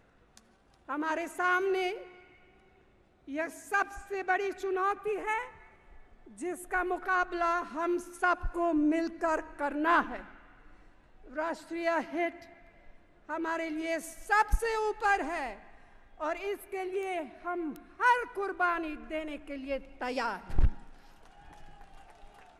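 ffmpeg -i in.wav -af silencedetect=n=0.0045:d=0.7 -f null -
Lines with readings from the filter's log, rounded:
silence_start: 2.25
silence_end: 3.28 | silence_duration: 1.03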